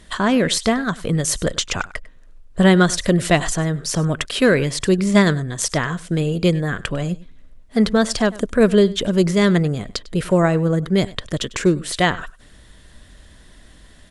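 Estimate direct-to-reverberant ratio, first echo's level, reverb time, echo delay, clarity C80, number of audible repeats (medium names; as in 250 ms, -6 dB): no reverb, -20.0 dB, no reverb, 99 ms, no reverb, 1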